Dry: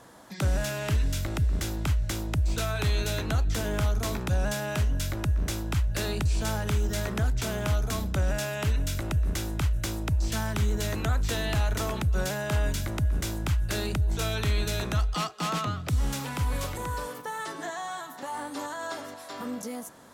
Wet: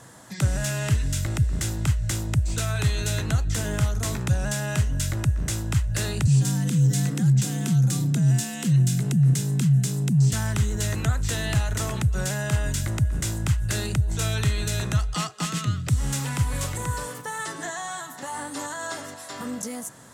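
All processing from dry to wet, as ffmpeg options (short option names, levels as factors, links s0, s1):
-filter_complex "[0:a]asettb=1/sr,asplit=3[s0][s1][s2];[s0]atrim=end=6.274[s3];[s1]atrim=start=6.27:end=10.33,asetpts=PTS-STARTPTS,afade=t=in:d=0.004:c=qsin,afade=t=out:st=4.056:d=0.004:c=qsin,acrossover=split=300|3000[s4][s5][s6];[s5]acompressor=threshold=0.00355:ratio=2:attack=3.2:release=140:knee=2.83:detection=peak[s7];[s4][s7][s6]amix=inputs=3:normalize=0,afreqshift=83[s8];[s2]atrim=start=10.326[s9];[s3][s8]acrossfade=d=0.004:c1=hsin:c2=qsin[s10];[s10][s9]acrossfade=d=0.004:c1=qsin:c2=hsin,asettb=1/sr,asplit=3[s11][s12][s13];[s11]atrim=end=15.454[s14];[s12]atrim=start=15.45:end=15.88,asetpts=PTS-STARTPTS,afade=t=in:d=0.004:c=qsin,afade=t=out:st=0.426:d=0.004:c=qsin,highpass=49,equalizer=f=820:w=1.3:g=-14[s15];[s13]atrim=start=15.876[s16];[s14][s15]acrossfade=d=0.004:c1=hsin:c2=qsin[s17];[s17][s16]acrossfade=d=0.004:c1=qsin:c2=hsin,bandreject=f=2300:w=15,alimiter=limit=0.0891:level=0:latency=1:release=300,equalizer=f=125:t=o:w=1:g=11,equalizer=f=2000:t=o:w=1:g=5,equalizer=f=8000:t=o:w=1:g=11"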